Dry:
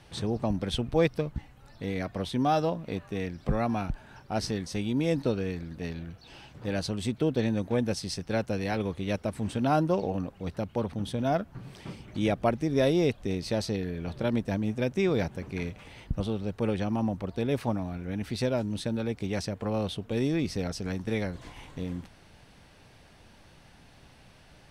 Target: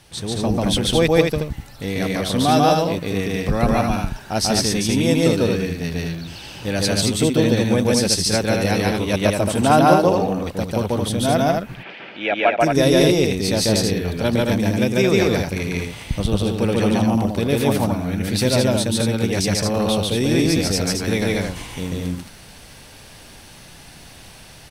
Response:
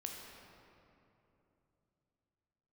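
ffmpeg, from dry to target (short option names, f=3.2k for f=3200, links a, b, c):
-filter_complex "[0:a]asplit=3[a][b][c];[a]afade=t=out:st=11.6:d=0.02[d];[b]highpass=500,equalizer=f=700:t=q:w=4:g=4,equalizer=f=1.1k:t=q:w=4:g=-6,equalizer=f=1.6k:t=q:w=4:g=7,equalizer=f=2.5k:t=q:w=4:g=6,lowpass=f=3k:w=0.5412,lowpass=f=3k:w=1.3066,afade=t=in:st=11.6:d=0.02,afade=t=out:st=12.59:d=0.02[e];[c]afade=t=in:st=12.59:d=0.02[f];[d][e][f]amix=inputs=3:normalize=0,aecho=1:1:142.9|221.6:1|0.631,crystalizer=i=2.5:c=0,asettb=1/sr,asplit=3[g][h][i];[g]atrim=end=9.134[j];[h]atrim=start=9.13:end=10.6,asetpts=PTS-STARTPTS,afade=t=in:d=0.004:c=qsin,afade=t=out:st=1.466:d=0.004:c=qsin,equalizer=f=890:w=0.45:g=5[k];[i]atrim=start=10.596[l];[j][k]acrossfade=d=0.004:c1=hsin:c2=qsin[m];[m][l]acrossfade=d=0.004:c1=qsin:c2=hsin,dynaudnorm=f=320:g=3:m=5.5dB,volume=1.5dB"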